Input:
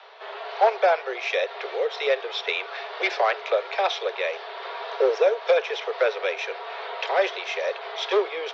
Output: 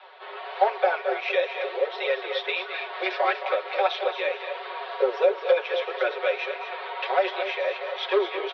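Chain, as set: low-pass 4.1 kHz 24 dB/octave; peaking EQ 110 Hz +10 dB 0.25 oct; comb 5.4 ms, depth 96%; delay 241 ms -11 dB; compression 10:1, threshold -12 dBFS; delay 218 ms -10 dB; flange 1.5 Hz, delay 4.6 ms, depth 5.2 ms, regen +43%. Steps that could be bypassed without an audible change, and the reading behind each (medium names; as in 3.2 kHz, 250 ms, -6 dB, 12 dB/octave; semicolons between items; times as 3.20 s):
peaking EQ 110 Hz: input has nothing below 340 Hz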